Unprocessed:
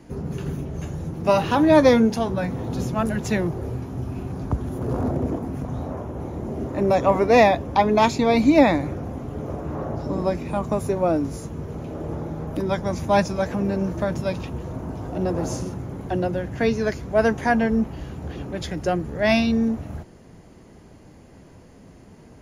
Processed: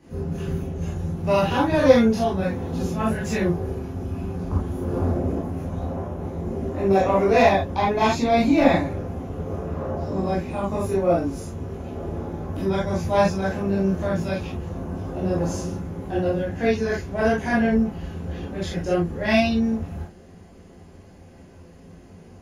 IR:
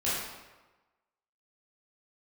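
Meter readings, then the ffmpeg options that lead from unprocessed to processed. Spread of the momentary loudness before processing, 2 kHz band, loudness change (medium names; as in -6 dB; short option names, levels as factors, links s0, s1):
15 LU, -0.5 dB, -0.5 dB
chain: -filter_complex "[0:a]acontrast=36[s0];[1:a]atrim=start_sample=2205,atrim=end_sample=3969[s1];[s0][s1]afir=irnorm=-1:irlink=0,volume=0.237"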